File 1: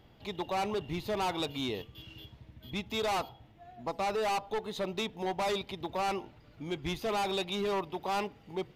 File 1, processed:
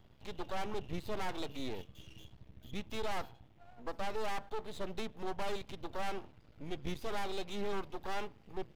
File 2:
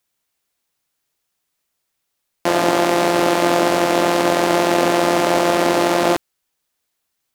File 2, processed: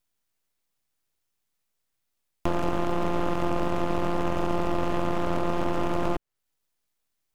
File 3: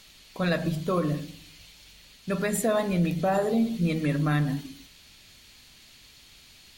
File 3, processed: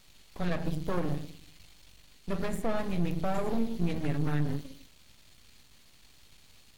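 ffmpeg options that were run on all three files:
-filter_complex "[0:a]acrossover=split=590|1300|2700[a][b][c][d];[a]acompressor=threshold=-21dB:ratio=4[e];[b]acompressor=threshold=-28dB:ratio=4[f];[c]acompressor=threshold=-35dB:ratio=4[g];[d]acompressor=threshold=-42dB:ratio=4[h];[e][f][g][h]amix=inputs=4:normalize=0,aeval=exprs='max(val(0),0)':c=same,lowshelf=f=260:g=6.5,volume=-3.5dB"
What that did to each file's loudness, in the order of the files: -7.5, -12.0, -6.5 LU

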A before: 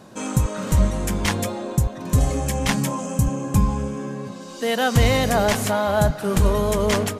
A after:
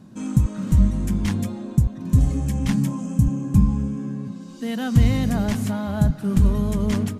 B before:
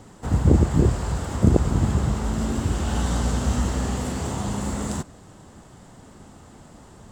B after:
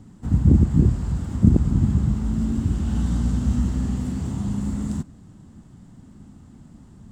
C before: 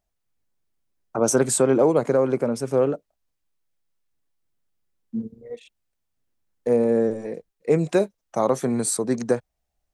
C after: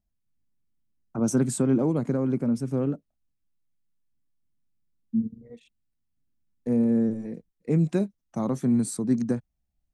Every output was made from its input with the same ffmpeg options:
-af "lowshelf=f=340:t=q:w=1.5:g=11,volume=-10dB"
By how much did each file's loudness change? 0.0, +1.5, -3.5 LU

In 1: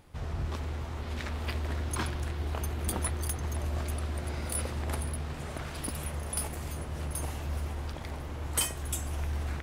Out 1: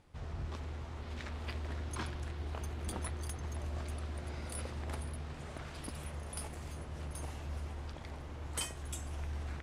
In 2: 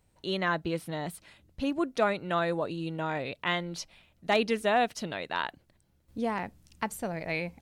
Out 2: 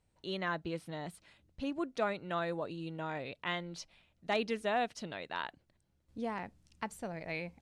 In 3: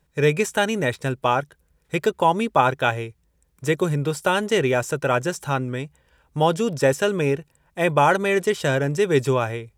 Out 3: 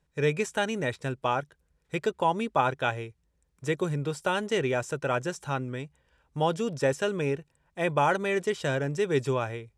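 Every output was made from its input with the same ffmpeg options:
-af "lowpass=9k,volume=-7dB"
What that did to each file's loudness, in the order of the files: -7.5, -7.0, -7.0 LU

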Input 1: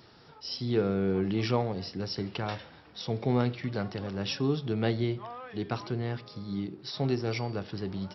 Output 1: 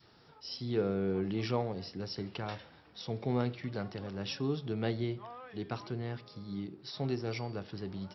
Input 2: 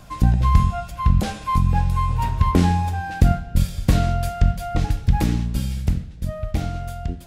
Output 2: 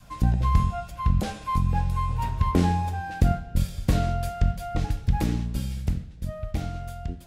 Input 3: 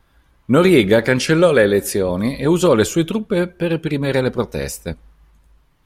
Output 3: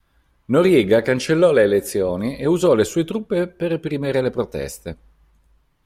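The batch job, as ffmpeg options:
-af "adynamicequalizer=threshold=0.0501:dfrequency=470:dqfactor=1:tfrequency=470:tqfactor=1:attack=5:release=100:ratio=0.375:range=2.5:mode=boostabove:tftype=bell,volume=-5.5dB"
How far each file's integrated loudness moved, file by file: -5.0, -5.0, -2.0 LU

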